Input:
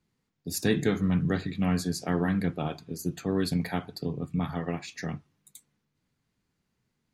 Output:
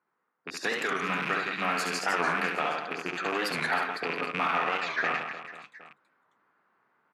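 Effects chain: rattle on loud lows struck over -34 dBFS, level -27 dBFS; level-controlled noise filter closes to 1.4 kHz, open at -22 dBFS; high-pass 480 Hz 12 dB/octave; gain riding within 4 dB 2 s; in parallel at -11.5 dB: overload inside the chain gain 32.5 dB; on the sum: compression, threshold -34 dBFS, peak gain reduction 8 dB; peaking EQ 1.3 kHz +13 dB 1.3 oct; on a send: reverse bouncing-ball echo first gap 70 ms, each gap 1.4×, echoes 5; on the sum: warped record 45 rpm, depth 160 cents; trim +2 dB

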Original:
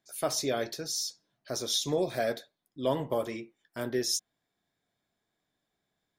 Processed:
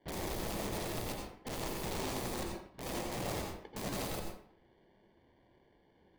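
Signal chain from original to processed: steep high-pass 1.2 kHz 36 dB/octave; sample-and-hold 34×; valve stage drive 47 dB, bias 0.2; low-pass 4.1 kHz 24 dB/octave; integer overflow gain 52 dB; on a send: reverberation RT60 0.60 s, pre-delay 79 ms, DRR 1.5 dB; on the sum: trim +16.5 dB

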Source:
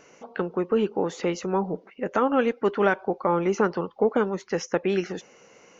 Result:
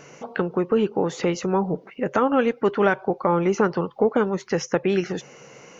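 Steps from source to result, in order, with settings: peaking EQ 140 Hz +12.5 dB 0.32 oct; in parallel at +2 dB: compression, threshold -33 dBFS, peak gain reduction 16 dB

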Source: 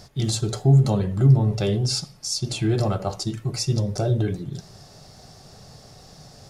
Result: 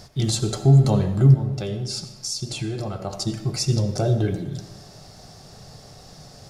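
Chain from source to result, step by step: 1.34–3.13 s: compression, threshold -27 dBFS, peak gain reduction 10 dB; on a send: reverberation RT60 1.2 s, pre-delay 40 ms, DRR 11 dB; on the sum: trim +1.5 dB

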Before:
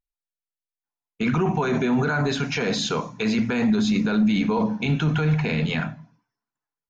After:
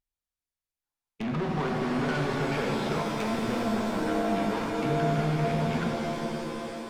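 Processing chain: low-pass that closes with the level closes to 1.5 kHz, closed at -22.5 dBFS; valve stage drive 29 dB, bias 0.4; pitch-shifted reverb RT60 3.3 s, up +7 st, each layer -2 dB, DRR 2 dB

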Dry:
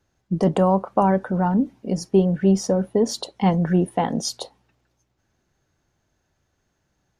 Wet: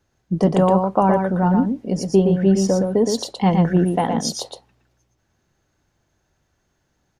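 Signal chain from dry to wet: delay 117 ms -5 dB; trim +1.5 dB

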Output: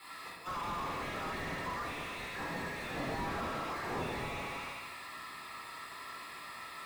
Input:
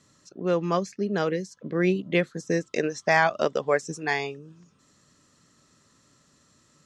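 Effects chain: formants flattened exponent 0.6; inverse Chebyshev high-pass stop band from 490 Hz, stop band 40 dB; level-controlled noise filter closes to 2.8 kHz, open at -18.5 dBFS; compression 5:1, threshold -31 dBFS, peak gain reduction 12.5 dB; slow attack 509 ms; sample-rate reducer 6.2 kHz, jitter 0%; comb of notches 1.5 kHz; multi-head delay 74 ms, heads all three, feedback 43%, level -14 dB; reverberation RT60 1.0 s, pre-delay 8 ms, DRR -7.5 dB; slew-rate limiter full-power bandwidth 4.2 Hz; trim +13 dB

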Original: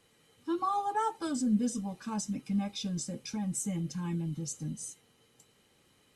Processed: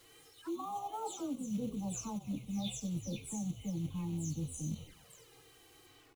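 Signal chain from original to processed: delay that grows with frequency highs early, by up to 294 ms; reverse; compression 6:1, threshold -44 dBFS, peak gain reduction 18.5 dB; reverse; companded quantiser 6-bit; on a send: frequency-shifting echo 93 ms, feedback 37%, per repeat -73 Hz, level -14 dB; on the sum: touch-sensitive flanger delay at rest 3.8 ms, full sweep at -46.5 dBFS; endings held to a fixed fall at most 460 dB/s; trim +8 dB

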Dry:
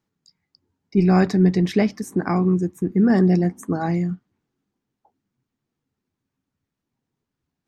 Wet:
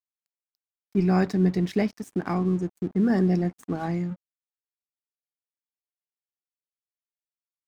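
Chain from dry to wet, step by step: crossover distortion -40 dBFS; trim -5 dB

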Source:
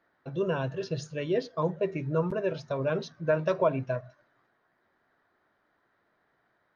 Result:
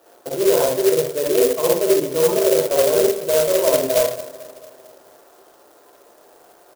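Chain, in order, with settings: reverse; compression 10:1, threshold -38 dBFS, peak gain reduction 18.5 dB; reverse; ladder band-pass 570 Hz, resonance 35%; feedback delay 222 ms, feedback 59%, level -19 dB; reverberation RT60 0.45 s, pre-delay 44 ms, DRR -4 dB; loudness maximiser +36 dB; sampling jitter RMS 0.098 ms; trim -5.5 dB

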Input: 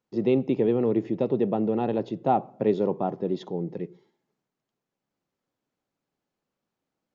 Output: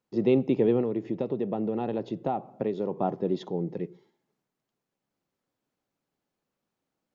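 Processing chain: 0.80–2.97 s: compression, threshold -25 dBFS, peak gain reduction 8.5 dB

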